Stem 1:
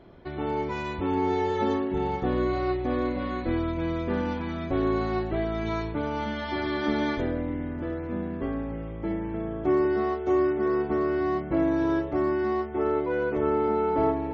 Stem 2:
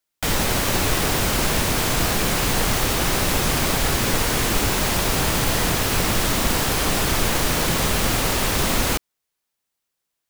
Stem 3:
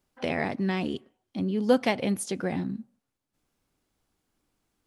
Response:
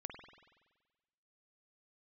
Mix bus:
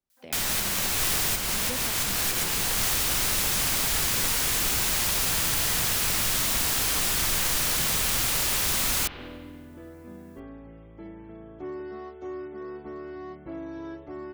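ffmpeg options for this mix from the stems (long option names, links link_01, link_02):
-filter_complex "[0:a]asoftclip=type=tanh:threshold=-14dB,adelay=1950,volume=-12.5dB[link_01];[1:a]tiltshelf=frequency=910:gain=-6,adelay=100,volume=0.5dB,asplit=2[link_02][link_03];[link_03]volume=-9dB[link_04];[2:a]volume=-15.5dB,asplit=2[link_05][link_06];[link_06]apad=whole_len=458544[link_07];[link_02][link_07]sidechaincompress=threshold=-60dB:ratio=4:attack=16:release=164[link_08];[link_01][link_08]amix=inputs=2:normalize=0,highshelf=frequency=4700:gain=8,acompressor=threshold=-21dB:ratio=6,volume=0dB[link_09];[3:a]atrim=start_sample=2205[link_10];[link_04][link_10]afir=irnorm=-1:irlink=0[link_11];[link_05][link_09][link_11]amix=inputs=3:normalize=0,acrossover=split=200[link_12][link_13];[link_13]acompressor=threshold=-26dB:ratio=2[link_14];[link_12][link_14]amix=inputs=2:normalize=0"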